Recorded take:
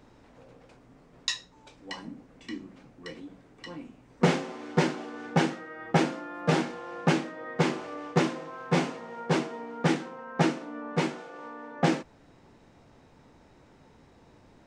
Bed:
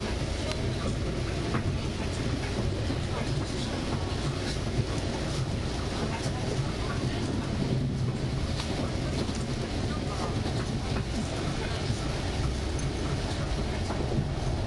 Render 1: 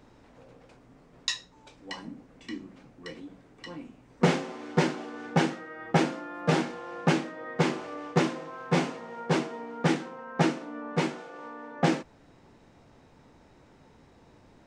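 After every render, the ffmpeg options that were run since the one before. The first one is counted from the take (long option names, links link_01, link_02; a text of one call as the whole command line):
ffmpeg -i in.wav -af anull out.wav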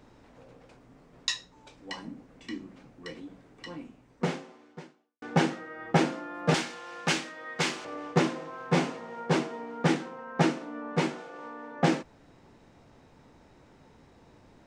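ffmpeg -i in.wav -filter_complex "[0:a]asettb=1/sr,asplit=3[link_01][link_02][link_03];[link_01]atrim=end=6.544[link_04];[link_02]atrim=start=6.54:end=7.85,asetpts=PTS-STARTPTS,afade=type=in:duration=0.004:curve=qsin,afade=type=out:start_time=1.306:duration=0.004:curve=qsin,tiltshelf=frequency=1400:gain=-8.5[link_05];[link_03]atrim=start=7.846[link_06];[link_04][link_05]acrossfade=duration=0.004:curve1=hsin:curve2=qsin[link_07];[link_07][link_06]acrossfade=duration=0.004:curve1=qsin:curve2=hsin,asplit=2[link_08][link_09];[link_08]atrim=end=5.22,asetpts=PTS-STARTPTS,afade=type=out:start_time=3.79:duration=1.43:curve=qua[link_10];[link_09]atrim=start=5.22,asetpts=PTS-STARTPTS,afade=type=in:duration=0.004:curve=hsin[link_11];[link_10][link_11]concat=n=2:v=0:a=1" out.wav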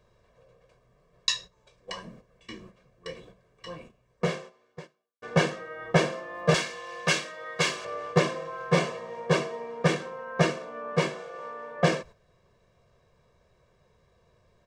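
ffmpeg -i in.wav -af "agate=range=-10dB:threshold=-45dB:ratio=16:detection=peak,aecho=1:1:1.8:0.98" out.wav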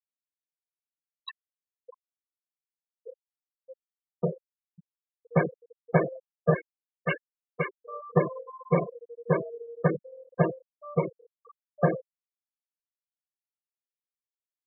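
ffmpeg -i in.wav -af "lowpass=2100,afftfilt=real='re*gte(hypot(re,im),0.112)':imag='im*gte(hypot(re,im),0.112)':win_size=1024:overlap=0.75" out.wav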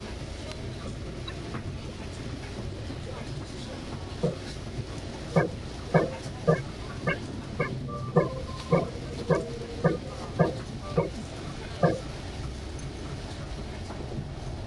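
ffmpeg -i in.wav -i bed.wav -filter_complex "[1:a]volume=-6.5dB[link_01];[0:a][link_01]amix=inputs=2:normalize=0" out.wav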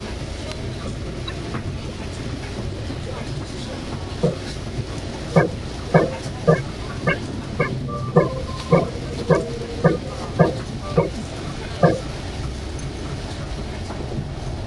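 ffmpeg -i in.wav -af "volume=8dB,alimiter=limit=-2dB:level=0:latency=1" out.wav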